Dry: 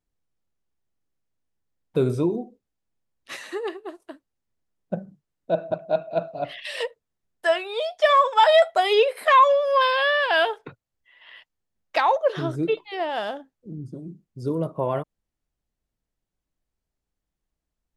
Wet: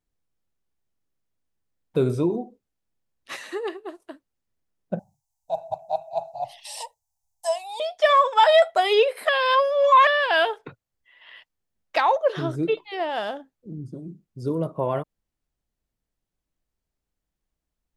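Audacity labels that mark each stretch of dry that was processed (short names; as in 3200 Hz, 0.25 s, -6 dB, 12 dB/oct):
2.300000	3.360000	dynamic EQ 960 Hz, up to +6 dB, over -50 dBFS, Q 1.5
4.990000	7.800000	EQ curve 110 Hz 0 dB, 190 Hz -23 dB, 380 Hz -29 dB, 540 Hz -16 dB, 840 Hz +12 dB, 1400 Hz -27 dB, 2100 Hz -15 dB, 3400 Hz -8 dB, 6200 Hz +11 dB, 11000 Hz +9 dB
9.290000	10.070000	reverse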